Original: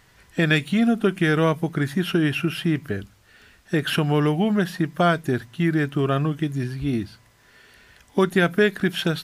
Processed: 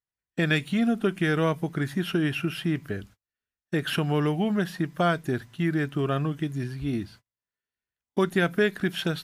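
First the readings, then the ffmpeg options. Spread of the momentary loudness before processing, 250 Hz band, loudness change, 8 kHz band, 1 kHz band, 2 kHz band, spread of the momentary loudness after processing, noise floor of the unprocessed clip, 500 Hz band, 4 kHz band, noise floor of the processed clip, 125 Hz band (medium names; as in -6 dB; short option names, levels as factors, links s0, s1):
7 LU, -4.5 dB, -4.5 dB, -4.5 dB, -4.5 dB, -4.5 dB, 7 LU, -56 dBFS, -4.5 dB, -4.5 dB, under -85 dBFS, -4.5 dB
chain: -af "agate=range=0.0126:threshold=0.00708:ratio=16:detection=peak,volume=0.596"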